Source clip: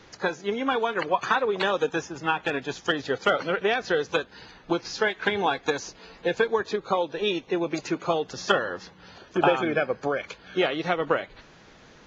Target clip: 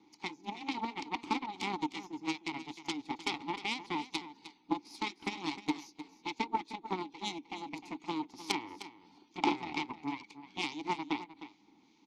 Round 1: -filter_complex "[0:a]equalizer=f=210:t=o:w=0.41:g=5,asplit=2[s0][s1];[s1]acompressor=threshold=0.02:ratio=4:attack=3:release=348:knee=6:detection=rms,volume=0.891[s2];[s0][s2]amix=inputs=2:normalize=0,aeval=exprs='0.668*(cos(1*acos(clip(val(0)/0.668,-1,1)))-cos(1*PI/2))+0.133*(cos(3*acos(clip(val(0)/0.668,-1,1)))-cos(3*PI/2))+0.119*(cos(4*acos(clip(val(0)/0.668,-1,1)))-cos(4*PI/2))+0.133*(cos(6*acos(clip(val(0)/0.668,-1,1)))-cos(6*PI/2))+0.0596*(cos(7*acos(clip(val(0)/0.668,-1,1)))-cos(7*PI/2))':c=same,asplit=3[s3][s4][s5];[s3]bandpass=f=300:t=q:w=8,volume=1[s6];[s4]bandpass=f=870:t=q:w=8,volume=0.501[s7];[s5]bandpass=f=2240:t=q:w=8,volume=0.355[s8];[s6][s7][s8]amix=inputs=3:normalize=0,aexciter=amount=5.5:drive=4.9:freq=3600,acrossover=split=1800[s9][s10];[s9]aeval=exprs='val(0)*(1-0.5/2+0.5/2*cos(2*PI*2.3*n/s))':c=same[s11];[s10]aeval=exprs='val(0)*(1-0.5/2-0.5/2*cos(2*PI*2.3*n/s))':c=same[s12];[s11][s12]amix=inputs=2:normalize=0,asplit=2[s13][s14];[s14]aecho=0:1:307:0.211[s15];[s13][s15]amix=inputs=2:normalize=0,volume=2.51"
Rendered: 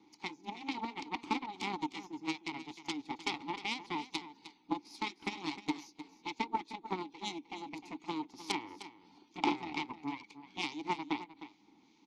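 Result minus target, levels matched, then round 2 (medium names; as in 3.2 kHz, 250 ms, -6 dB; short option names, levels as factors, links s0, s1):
compression: peak gain reduction +5 dB
-filter_complex "[0:a]equalizer=f=210:t=o:w=0.41:g=5,asplit=2[s0][s1];[s1]acompressor=threshold=0.0447:ratio=4:attack=3:release=348:knee=6:detection=rms,volume=0.891[s2];[s0][s2]amix=inputs=2:normalize=0,aeval=exprs='0.668*(cos(1*acos(clip(val(0)/0.668,-1,1)))-cos(1*PI/2))+0.133*(cos(3*acos(clip(val(0)/0.668,-1,1)))-cos(3*PI/2))+0.119*(cos(4*acos(clip(val(0)/0.668,-1,1)))-cos(4*PI/2))+0.133*(cos(6*acos(clip(val(0)/0.668,-1,1)))-cos(6*PI/2))+0.0596*(cos(7*acos(clip(val(0)/0.668,-1,1)))-cos(7*PI/2))':c=same,asplit=3[s3][s4][s5];[s3]bandpass=f=300:t=q:w=8,volume=1[s6];[s4]bandpass=f=870:t=q:w=8,volume=0.501[s7];[s5]bandpass=f=2240:t=q:w=8,volume=0.355[s8];[s6][s7][s8]amix=inputs=3:normalize=0,aexciter=amount=5.5:drive=4.9:freq=3600,acrossover=split=1800[s9][s10];[s9]aeval=exprs='val(0)*(1-0.5/2+0.5/2*cos(2*PI*2.3*n/s))':c=same[s11];[s10]aeval=exprs='val(0)*(1-0.5/2-0.5/2*cos(2*PI*2.3*n/s))':c=same[s12];[s11][s12]amix=inputs=2:normalize=0,asplit=2[s13][s14];[s14]aecho=0:1:307:0.211[s15];[s13][s15]amix=inputs=2:normalize=0,volume=2.51"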